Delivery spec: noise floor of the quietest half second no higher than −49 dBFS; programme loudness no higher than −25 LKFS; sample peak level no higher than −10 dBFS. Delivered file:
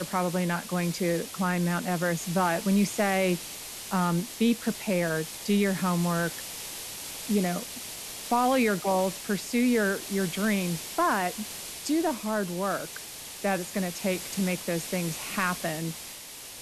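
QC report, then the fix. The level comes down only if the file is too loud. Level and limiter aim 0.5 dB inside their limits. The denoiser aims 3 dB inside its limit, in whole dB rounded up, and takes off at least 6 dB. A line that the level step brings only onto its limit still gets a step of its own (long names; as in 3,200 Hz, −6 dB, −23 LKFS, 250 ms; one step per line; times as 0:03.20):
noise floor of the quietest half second −43 dBFS: out of spec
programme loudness −28.0 LKFS: in spec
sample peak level −12.5 dBFS: in spec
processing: broadband denoise 9 dB, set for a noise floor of −43 dBFS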